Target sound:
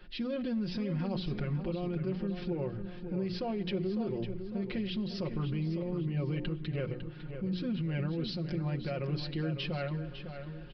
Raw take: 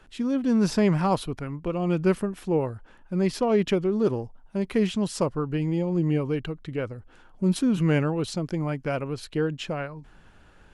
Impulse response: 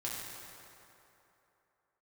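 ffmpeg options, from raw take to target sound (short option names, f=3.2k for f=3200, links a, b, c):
-filter_complex "[0:a]equalizer=f=980:w=1.1:g=-9,bandreject=f=60:t=h:w=6,bandreject=f=120:t=h:w=6,bandreject=f=180:t=h:w=6,bandreject=f=240:t=h:w=6,bandreject=f=300:t=h:w=6,bandreject=f=360:t=h:w=6,aecho=1:1:5.6:0.8,acompressor=threshold=-26dB:ratio=4,alimiter=level_in=4dB:limit=-24dB:level=0:latency=1:release=34,volume=-4dB,asplit=2[a][b];[b]adelay=553,lowpass=f=3.6k:p=1,volume=-8.5dB,asplit=2[c][d];[d]adelay=553,lowpass=f=3.6k:p=1,volume=0.48,asplit=2[e][f];[f]adelay=553,lowpass=f=3.6k:p=1,volume=0.48,asplit=2[g][h];[h]adelay=553,lowpass=f=3.6k:p=1,volume=0.48,asplit=2[i][j];[j]adelay=553,lowpass=f=3.6k:p=1,volume=0.48[k];[a][c][e][g][i][k]amix=inputs=6:normalize=0,asplit=2[l][m];[1:a]atrim=start_sample=2205[n];[m][n]afir=irnorm=-1:irlink=0,volume=-19.5dB[o];[l][o]amix=inputs=2:normalize=0,aresample=11025,aresample=44100"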